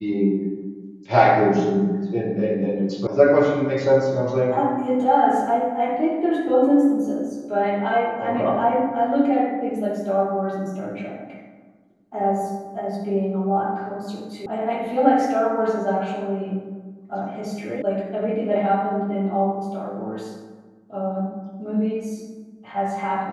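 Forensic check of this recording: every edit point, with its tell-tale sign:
3.07 s: sound stops dead
14.46 s: sound stops dead
17.82 s: sound stops dead

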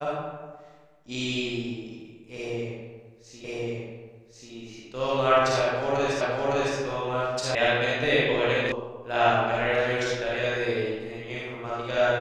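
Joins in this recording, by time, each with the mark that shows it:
3.44 s: repeat of the last 1.09 s
6.21 s: repeat of the last 0.56 s
7.55 s: sound stops dead
8.72 s: sound stops dead

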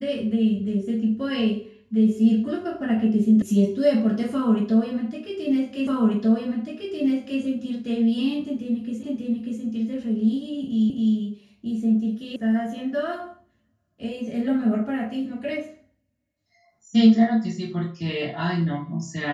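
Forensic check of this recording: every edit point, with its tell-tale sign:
3.42 s: sound stops dead
5.87 s: repeat of the last 1.54 s
9.03 s: repeat of the last 0.59 s
10.90 s: repeat of the last 0.26 s
12.36 s: sound stops dead

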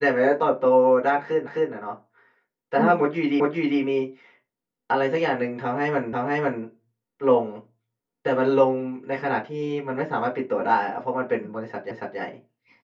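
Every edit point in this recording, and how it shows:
1.47 s: repeat of the last 0.26 s
3.40 s: repeat of the last 0.4 s
6.13 s: repeat of the last 0.5 s
11.91 s: repeat of the last 0.28 s

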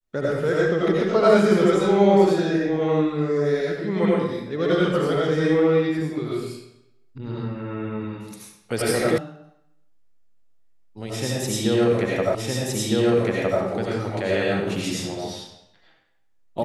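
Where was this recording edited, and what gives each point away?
9.18 s: sound stops dead
12.35 s: repeat of the last 1.26 s

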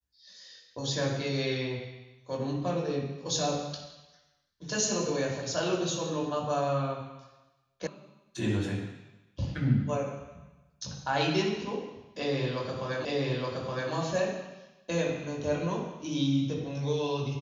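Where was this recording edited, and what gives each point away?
7.87 s: sound stops dead
13.05 s: repeat of the last 0.87 s

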